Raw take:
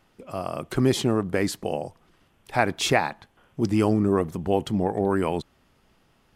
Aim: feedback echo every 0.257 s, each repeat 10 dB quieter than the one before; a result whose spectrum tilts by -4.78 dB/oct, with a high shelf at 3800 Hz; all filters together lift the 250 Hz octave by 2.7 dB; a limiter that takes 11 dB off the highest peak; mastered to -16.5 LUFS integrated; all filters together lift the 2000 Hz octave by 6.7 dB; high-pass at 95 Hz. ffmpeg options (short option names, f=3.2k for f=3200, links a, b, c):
-af "highpass=95,equalizer=f=250:t=o:g=3.5,equalizer=f=2k:t=o:g=7,highshelf=f=3.8k:g=5,alimiter=limit=-11.5dB:level=0:latency=1,aecho=1:1:257|514|771|1028:0.316|0.101|0.0324|0.0104,volume=8dB"